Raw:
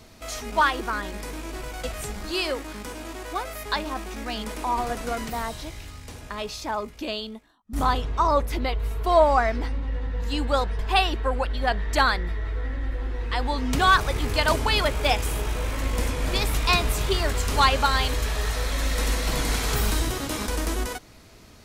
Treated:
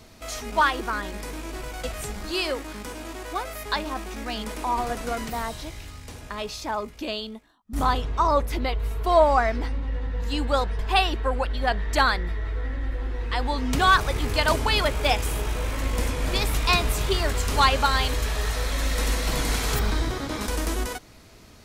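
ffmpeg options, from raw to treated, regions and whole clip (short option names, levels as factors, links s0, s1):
-filter_complex "[0:a]asettb=1/sr,asplit=3[s0][s1][s2];[s0]atrim=end=19.794[s3];[s1]atrim=start=19.79:end=20.41,asetpts=PTS-STARTPTS,afade=t=in:d=0.004:c=qsin,afade=t=out:st=0.616:d=0.004:c=qsin,equalizer=f=2800:t=o:w=0.24:g=-7.5,acrossover=split=5200[s4][s5];[s5]acompressor=threshold=0.00398:ratio=4:attack=1:release=60[s6];[s4][s6]amix=inputs=2:normalize=0[s7];[s2]atrim=start=20.406[s8];[s3][s7]acrossfade=d=0.004:c1=hsin:c2=qsin[s9];[s9][s8]acrossfade=d=0.004:c1=qsin:c2=hsin"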